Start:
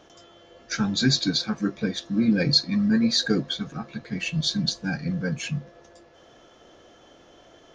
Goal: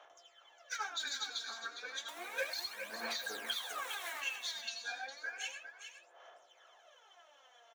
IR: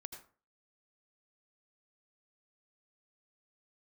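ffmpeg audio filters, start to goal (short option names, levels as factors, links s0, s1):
-filter_complex "[0:a]asettb=1/sr,asplit=3[s0][s1][s2];[s0]atrim=end=2.084[s3];[s1]atrim=start=2.08:end=4.2,asetpts=PTS-STARTPTS,afade=t=in:d=0.004:c=qsin,afade=t=out:st=2.116:d=0.004:c=qsin,aeval=exprs='val(0)+0.5*0.0398*sgn(val(0))':c=same[s4];[s2]atrim=start=4.196[s5];[s3][s4]acrossfade=d=0.004:c1=hsin:c2=qsin[s6];[s6][s5]acrossfade=d=0.004:c1=qsin:c2=hsin,highpass=f=710:w=0.5412,highpass=f=710:w=1.3066[s7];[1:a]atrim=start_sample=2205[s8];[s7][s8]afir=irnorm=-1:irlink=0,aphaser=in_gain=1:out_gain=1:delay=4.4:decay=0.76:speed=0.32:type=sinusoidal,alimiter=limit=0.106:level=0:latency=1:release=178,equalizer=f=4800:w=3.9:g=-11.5,asplit=2[s9][s10];[s10]adelay=17,volume=0.251[s11];[s9][s11]amix=inputs=2:normalize=0,aecho=1:1:408:0.355,volume=0.531"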